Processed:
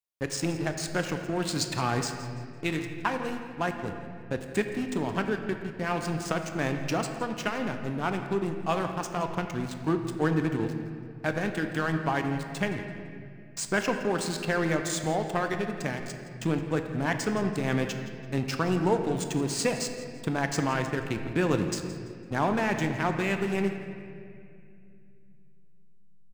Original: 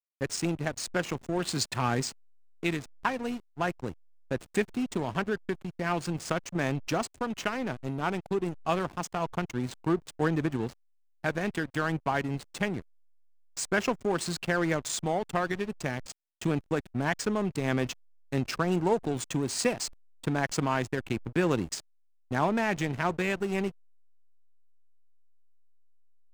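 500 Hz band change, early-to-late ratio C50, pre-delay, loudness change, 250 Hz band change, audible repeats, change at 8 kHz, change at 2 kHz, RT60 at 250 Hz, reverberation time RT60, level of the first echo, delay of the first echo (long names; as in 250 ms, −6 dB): +1.0 dB, 6.5 dB, 6 ms, +1.0 dB, +1.5 dB, 1, +0.5 dB, +1.0 dB, 3.4 s, 2.4 s, −16.5 dB, 168 ms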